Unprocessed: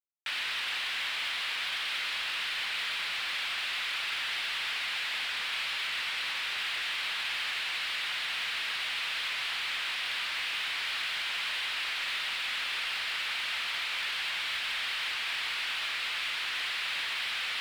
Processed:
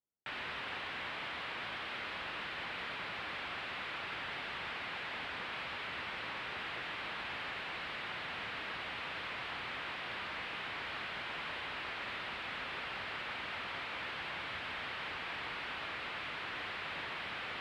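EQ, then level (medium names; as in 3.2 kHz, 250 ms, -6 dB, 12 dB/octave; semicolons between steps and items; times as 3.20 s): high-pass 53 Hz; low-pass 1.6 kHz 6 dB/octave; tilt shelf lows +8.5 dB; +1.5 dB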